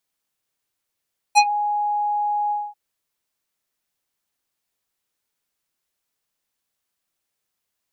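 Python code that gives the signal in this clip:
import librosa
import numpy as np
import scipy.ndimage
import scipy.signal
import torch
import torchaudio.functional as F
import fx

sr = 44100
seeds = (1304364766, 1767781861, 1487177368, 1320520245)

y = fx.sub_voice(sr, note=80, wave='square', cutoff_hz=850.0, q=1.3, env_oct=4.0, env_s=0.14, attack_ms=30.0, decay_s=0.06, sustain_db=-14.0, release_s=0.23, note_s=1.16, slope=24)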